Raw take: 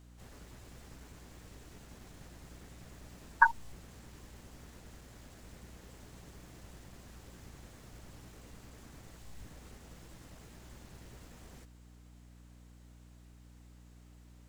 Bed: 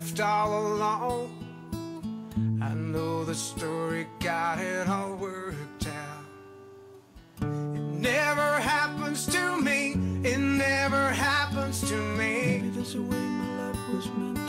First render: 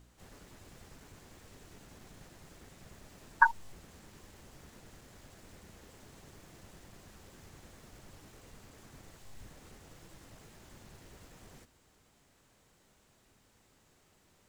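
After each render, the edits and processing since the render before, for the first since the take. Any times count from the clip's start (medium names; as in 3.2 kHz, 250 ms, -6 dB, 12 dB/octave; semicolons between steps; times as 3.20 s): de-hum 60 Hz, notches 5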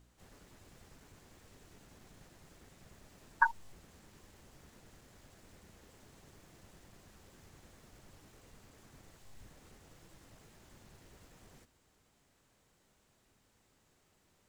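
trim -4.5 dB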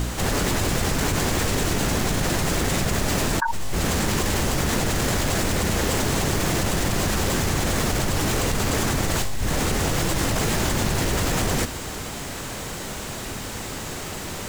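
level flattener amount 100%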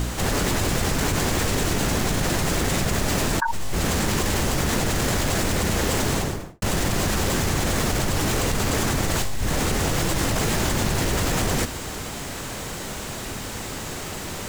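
6.10–6.62 s: studio fade out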